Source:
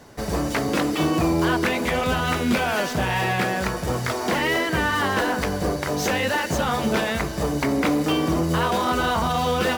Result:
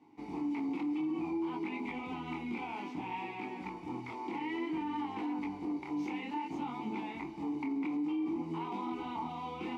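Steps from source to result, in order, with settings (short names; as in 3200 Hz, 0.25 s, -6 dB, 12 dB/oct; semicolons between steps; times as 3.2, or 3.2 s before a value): vowel filter u; chorus 0.58 Hz, delay 19 ms, depth 7.3 ms; limiter -30 dBFS, peak gain reduction 9.5 dB; gain +1 dB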